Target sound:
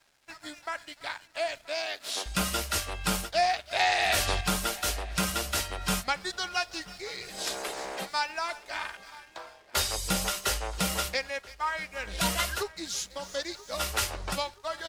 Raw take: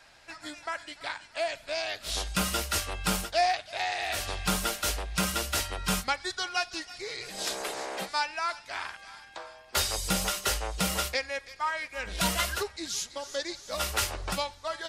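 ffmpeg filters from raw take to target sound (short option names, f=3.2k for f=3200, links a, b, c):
-filter_complex "[0:a]asettb=1/sr,asplit=3[a][b][c];[a]atrim=end=1.674[d];[b]atrim=start=1.67:end=2.26,asetpts=PTS-STARTPTS,afade=t=in:d=0.004:c=qsin,afade=t=out:st=0.586:d=0.004:c=qsin,highpass=f=230:w=0.5412,highpass=f=230:w=1.3066[e];[c]atrim=start=2.256[f];[d][e]acrossfade=d=0.004:c1=hsin:c2=qsin[g];[g][f]acrossfade=d=0.004:c1=qsin:c2=hsin,asettb=1/sr,asplit=3[h][i][j];[h]atrim=end=3.714[k];[i]atrim=start=3.71:end=4.41,asetpts=PTS-STARTPTS,afade=t=in:d=0.004:c=qsin,afade=t=out:st=0.696:d=0.004:c=qsin,acontrast=68[l];[j]atrim=start=4.406[m];[k][l]acrossfade=d=0.004:c1=hsin:c2=qsin[n];[n][m]acrossfade=d=0.004:c1=qsin:c2=hsin,asettb=1/sr,asplit=3[o][p][q];[o]atrim=end=8.294[r];[p]atrim=start=8.29:end=9.35,asetpts=PTS-STARTPTS,afade=t=in:d=0.004:c=qsin,afade=t=out:st=1.056:d=0.004:c=qsin,aecho=1:1:3.3:0.67,atrim=end_sample=46746[s];[q]atrim=start=9.346[t];[r][s]acrossfade=d=0.004:c1=hsin:c2=qsin[u];[u][t]acrossfade=d=0.004:c1=qsin:c2=hsin,aeval=exprs='sgn(val(0))*max(abs(val(0))-0.00178,0)':c=same,asplit=2[v][w];[w]adelay=979,lowpass=f=2.5k:p=1,volume=-20dB,asplit=2[x][y];[y]adelay=979,lowpass=f=2.5k:p=1,volume=0.45,asplit=2[z][aa];[aa]adelay=979,lowpass=f=2.5k:p=1,volume=0.45[ab];[v][x][z][ab]amix=inputs=4:normalize=0"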